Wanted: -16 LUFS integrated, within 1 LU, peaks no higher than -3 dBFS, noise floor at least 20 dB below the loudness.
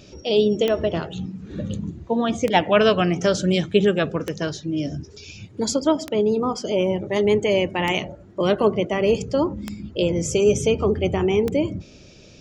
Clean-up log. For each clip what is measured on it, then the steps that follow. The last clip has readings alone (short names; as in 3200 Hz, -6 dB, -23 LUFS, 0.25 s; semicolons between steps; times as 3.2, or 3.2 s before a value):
clicks 7; loudness -21.5 LUFS; peak -5.0 dBFS; loudness target -16.0 LUFS
-> de-click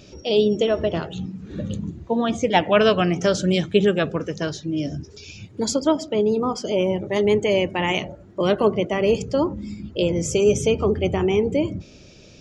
clicks 0; loudness -21.5 LUFS; peak -5.0 dBFS; loudness target -16.0 LUFS
-> gain +5.5 dB; limiter -3 dBFS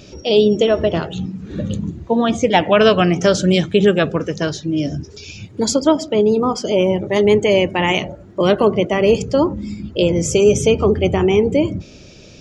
loudness -16.5 LUFS; peak -3.0 dBFS; noise floor -41 dBFS